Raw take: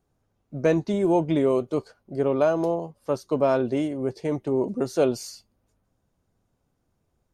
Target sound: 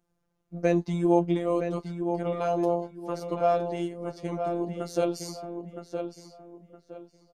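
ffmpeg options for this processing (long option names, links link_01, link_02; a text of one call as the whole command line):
ffmpeg -i in.wav -filter_complex "[0:a]afftfilt=real='hypot(re,im)*cos(PI*b)':imag='0':win_size=1024:overlap=0.75,asplit=2[link_01][link_02];[link_02]adelay=965,lowpass=frequency=3200:poles=1,volume=-7dB,asplit=2[link_03][link_04];[link_04]adelay=965,lowpass=frequency=3200:poles=1,volume=0.29,asplit=2[link_05][link_06];[link_06]adelay=965,lowpass=frequency=3200:poles=1,volume=0.29,asplit=2[link_07][link_08];[link_08]adelay=965,lowpass=frequency=3200:poles=1,volume=0.29[link_09];[link_01][link_03][link_05][link_07][link_09]amix=inputs=5:normalize=0" out.wav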